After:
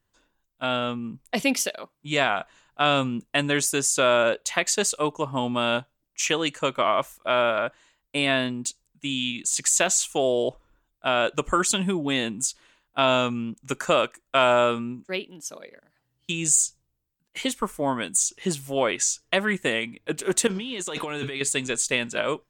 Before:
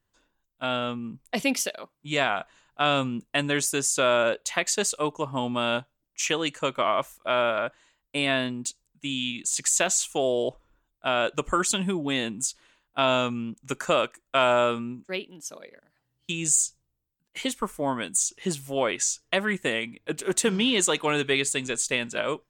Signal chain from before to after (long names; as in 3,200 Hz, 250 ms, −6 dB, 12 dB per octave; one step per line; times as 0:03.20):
0:20.47–0:21.41: compressor whose output falls as the input rises −33 dBFS, ratio −1
level +2 dB